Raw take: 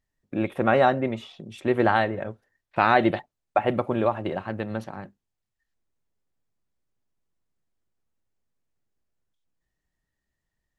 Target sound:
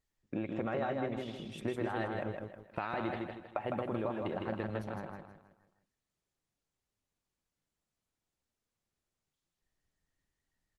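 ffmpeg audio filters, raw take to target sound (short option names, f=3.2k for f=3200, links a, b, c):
-filter_complex "[0:a]asettb=1/sr,asplit=3[a][b][c];[a]atrim=end=1.644[d];[b]atrim=start=1.64:end=4.03,asetpts=PTS-STARTPTS,afade=t=in:d=0.004:c=qsin,afade=t=out:st=2.386:d=0.004:c=qsin,highshelf=f=4.8k:g=2.5[e];[c]atrim=start=4.026[f];[d][e]acrossfade=d=0.004:c1=hsin:c2=qsin[g];[g][f]acrossfade=d=0.004:c1=qsin:c2=hsin,alimiter=limit=-12.5dB:level=0:latency=1:release=20,acompressor=threshold=-29dB:ratio=5,aecho=1:1:158|316|474|632|790:0.668|0.261|0.102|0.0396|0.0155,volume=-4dB" -ar 48000 -c:a libopus -b:a 20k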